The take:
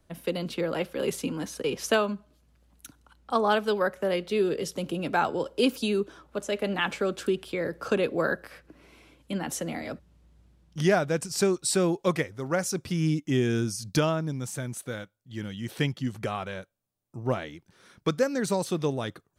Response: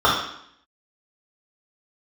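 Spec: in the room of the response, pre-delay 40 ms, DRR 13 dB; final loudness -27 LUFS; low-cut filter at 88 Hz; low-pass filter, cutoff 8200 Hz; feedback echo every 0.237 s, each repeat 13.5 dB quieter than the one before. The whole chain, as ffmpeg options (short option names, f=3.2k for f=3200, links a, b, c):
-filter_complex "[0:a]highpass=88,lowpass=8.2k,aecho=1:1:237|474:0.211|0.0444,asplit=2[a][b];[1:a]atrim=start_sample=2205,adelay=40[c];[b][c]afir=irnorm=-1:irlink=0,volume=-36.5dB[d];[a][d]amix=inputs=2:normalize=0,volume=1.5dB"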